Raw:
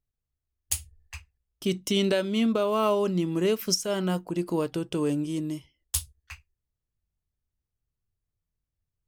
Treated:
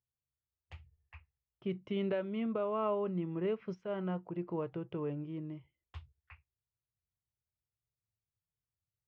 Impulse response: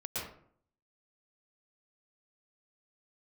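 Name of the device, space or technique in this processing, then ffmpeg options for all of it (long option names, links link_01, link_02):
bass cabinet: -af "highpass=76,equalizer=frequency=120:width_type=q:width=4:gain=6,equalizer=frequency=270:width_type=q:width=4:gain=-9,equalizer=frequency=1600:width_type=q:width=4:gain=-4,lowpass=frequency=2200:width=0.5412,lowpass=frequency=2200:width=1.3066,volume=-8.5dB"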